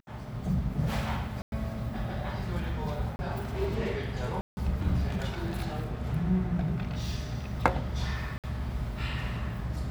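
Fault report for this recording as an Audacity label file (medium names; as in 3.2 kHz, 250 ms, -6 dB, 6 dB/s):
1.420000	1.520000	dropout 101 ms
3.160000	3.190000	dropout 30 ms
4.410000	4.570000	dropout 160 ms
8.380000	8.440000	dropout 57 ms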